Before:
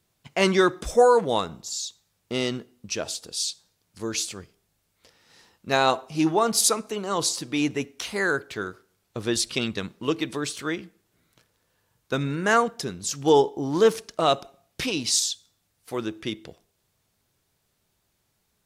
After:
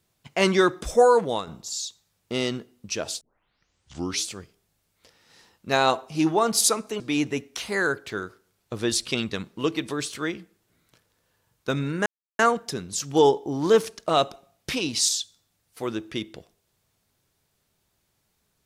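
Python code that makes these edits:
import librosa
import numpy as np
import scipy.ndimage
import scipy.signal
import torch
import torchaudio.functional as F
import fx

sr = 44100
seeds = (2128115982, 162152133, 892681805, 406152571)

y = fx.edit(x, sr, fx.fade_out_to(start_s=1.21, length_s=0.26, floor_db=-8.0),
    fx.tape_start(start_s=3.21, length_s=1.05),
    fx.cut(start_s=7.0, length_s=0.44),
    fx.insert_silence(at_s=12.5, length_s=0.33), tone=tone)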